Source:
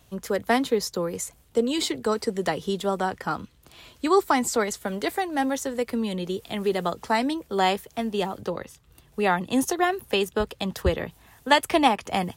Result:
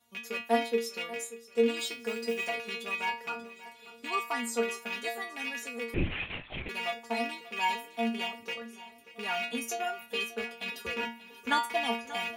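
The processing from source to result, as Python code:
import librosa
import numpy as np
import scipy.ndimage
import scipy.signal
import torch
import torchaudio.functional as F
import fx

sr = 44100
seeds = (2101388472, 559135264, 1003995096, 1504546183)

y = fx.rattle_buzz(x, sr, strikes_db=-33.0, level_db=-12.0)
y = scipy.signal.sosfilt(scipy.signal.butter(4, 80.0, 'highpass', fs=sr, output='sos'), y)
y = fx.peak_eq(y, sr, hz=160.0, db=-6.5, octaves=1.2)
y = fx.stiff_resonator(y, sr, f0_hz=230.0, decay_s=0.38, stiffness=0.002)
y = fx.mod_noise(y, sr, seeds[0], snr_db=23, at=(1.78, 2.48), fade=0.02)
y = fx.small_body(y, sr, hz=(290.0, 940.0, 1400.0), ring_ms=25, db=13, at=(10.96, 11.73))
y = fx.echo_feedback(y, sr, ms=585, feedback_pct=56, wet_db=-17.0)
y = fx.lpc_vocoder(y, sr, seeds[1], excitation='whisper', order=8, at=(5.94, 6.69))
y = y * 10.0 ** (5.0 / 20.0)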